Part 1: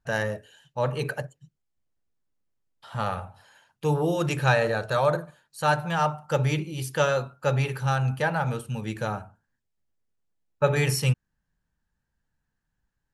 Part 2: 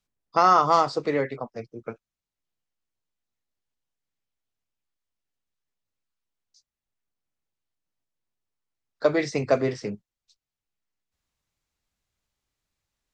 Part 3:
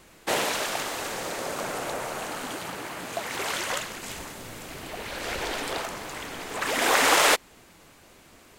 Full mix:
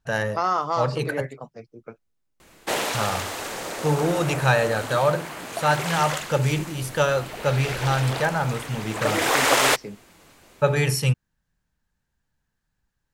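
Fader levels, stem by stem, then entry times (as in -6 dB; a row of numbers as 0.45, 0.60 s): +2.0, -5.5, +0.5 dB; 0.00, 0.00, 2.40 s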